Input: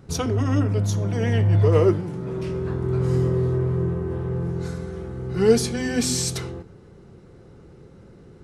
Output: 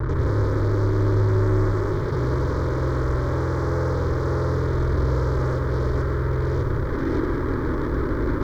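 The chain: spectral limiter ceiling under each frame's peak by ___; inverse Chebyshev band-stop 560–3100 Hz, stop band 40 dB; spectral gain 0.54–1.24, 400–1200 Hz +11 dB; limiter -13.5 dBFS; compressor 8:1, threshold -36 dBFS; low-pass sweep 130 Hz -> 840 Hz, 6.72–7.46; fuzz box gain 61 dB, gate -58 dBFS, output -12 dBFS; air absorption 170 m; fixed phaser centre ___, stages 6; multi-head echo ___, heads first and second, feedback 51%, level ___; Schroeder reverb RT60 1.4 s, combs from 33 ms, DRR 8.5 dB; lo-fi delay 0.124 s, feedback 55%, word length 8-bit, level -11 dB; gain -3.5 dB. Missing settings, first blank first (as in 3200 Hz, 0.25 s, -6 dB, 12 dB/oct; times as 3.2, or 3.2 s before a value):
22 dB, 730 Hz, 0.176 s, -16 dB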